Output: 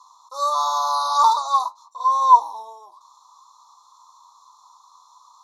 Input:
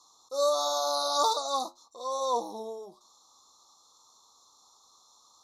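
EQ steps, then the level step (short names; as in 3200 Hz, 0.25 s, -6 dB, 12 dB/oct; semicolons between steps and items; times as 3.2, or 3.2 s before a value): resonant high-pass 1000 Hz, resonance Q 11; 0.0 dB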